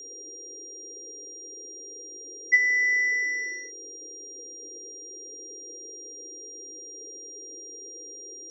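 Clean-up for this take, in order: band-stop 5.7 kHz, Q 30; noise print and reduce 30 dB

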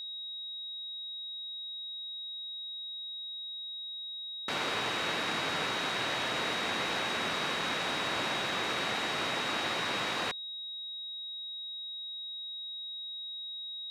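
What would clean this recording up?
band-stop 3.8 kHz, Q 30

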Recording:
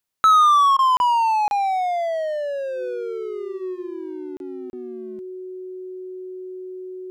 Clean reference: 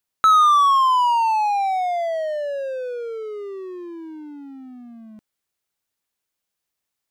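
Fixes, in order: band-stop 370 Hz, Q 30; interpolate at 0.97/1.48/4.37/4.70 s, 31 ms; interpolate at 0.77 s, 18 ms

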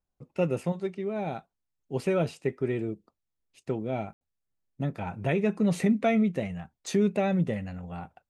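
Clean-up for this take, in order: room tone fill 4.13–4.21 s

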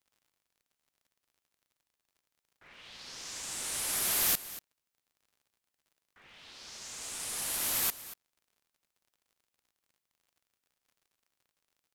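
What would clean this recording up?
de-click; inverse comb 236 ms -16 dB

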